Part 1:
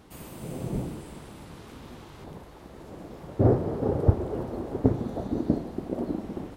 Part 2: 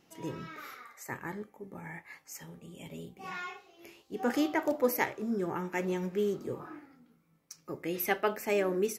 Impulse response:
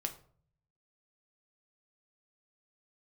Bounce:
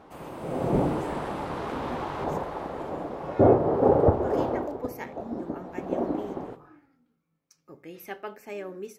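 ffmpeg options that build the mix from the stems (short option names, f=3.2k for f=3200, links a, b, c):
-filter_complex "[0:a]equalizer=f=810:t=o:w=2.9:g=15,alimiter=limit=-5dB:level=0:latency=1:release=362,dynaudnorm=f=150:g=9:m=11dB,volume=-1dB,afade=t=out:st=4.5:d=0.24:silence=0.266073,afade=t=in:st=5.56:d=0.5:silence=0.316228,asplit=2[a][b];[b]volume=-4dB[c];[1:a]bandreject=f=2k:w=23,volume=-10.5dB,asplit=2[d][e];[e]volume=-8.5dB[f];[2:a]atrim=start_sample=2205[g];[c][f]amix=inputs=2:normalize=0[h];[h][g]afir=irnorm=-1:irlink=0[i];[a][d][i]amix=inputs=3:normalize=0,highshelf=f=5.6k:g=-6.5"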